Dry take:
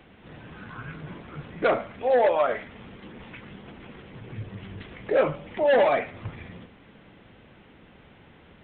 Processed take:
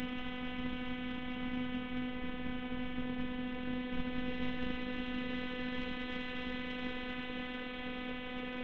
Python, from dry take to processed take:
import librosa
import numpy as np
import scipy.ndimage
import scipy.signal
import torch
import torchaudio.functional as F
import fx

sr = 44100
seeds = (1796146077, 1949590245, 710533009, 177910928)

y = fx.paulstretch(x, sr, seeds[0], factor=33.0, window_s=0.25, from_s=4.64)
y = fx.cheby_harmonics(y, sr, harmonics=(3,), levels_db=(-18,), full_scale_db=-26.5)
y = fx.robotise(y, sr, hz=250.0)
y = F.gain(torch.from_numpy(y), 8.5).numpy()